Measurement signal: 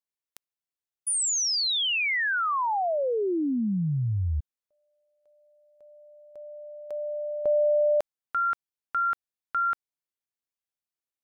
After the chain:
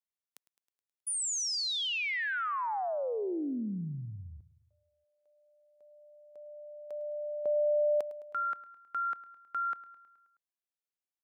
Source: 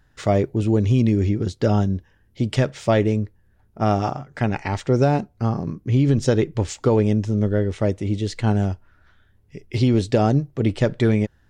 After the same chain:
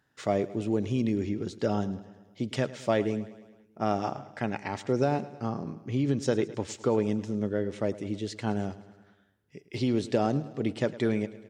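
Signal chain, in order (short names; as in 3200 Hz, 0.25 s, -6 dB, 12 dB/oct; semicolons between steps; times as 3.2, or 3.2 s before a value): HPF 170 Hz 12 dB/oct; on a send: feedback echo 0.106 s, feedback 59%, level -17 dB; on the sum: gain -7 dB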